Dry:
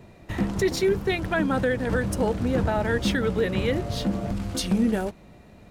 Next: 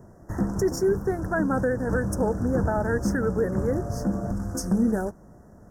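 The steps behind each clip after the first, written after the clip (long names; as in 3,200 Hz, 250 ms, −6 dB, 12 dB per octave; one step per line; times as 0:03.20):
elliptic band-stop filter 1,600–5,600 Hz, stop band 40 dB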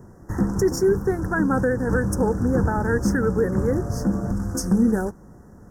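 parametric band 640 Hz −12 dB 0.22 octaves
level +4 dB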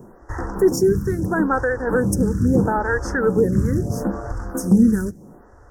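phaser with staggered stages 0.76 Hz
level +5.5 dB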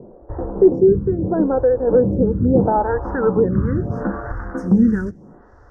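low-pass filter sweep 570 Hz → 3,900 Hz, 0:02.29–0:05.59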